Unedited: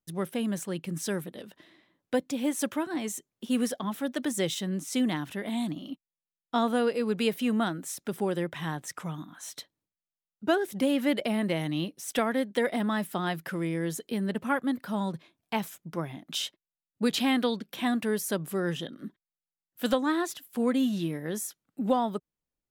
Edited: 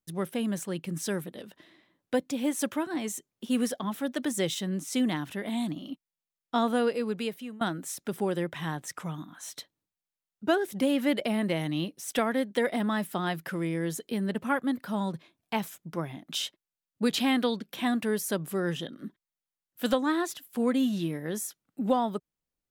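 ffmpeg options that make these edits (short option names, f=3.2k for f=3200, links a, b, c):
-filter_complex "[0:a]asplit=2[a][b];[a]atrim=end=7.61,asetpts=PTS-STARTPTS,afade=t=out:st=6.88:d=0.73:silence=0.0707946[c];[b]atrim=start=7.61,asetpts=PTS-STARTPTS,afade=t=in:d=0.004:c=hsin:silence=0.0707946[d];[c][d]concat=n=2:v=0:a=1"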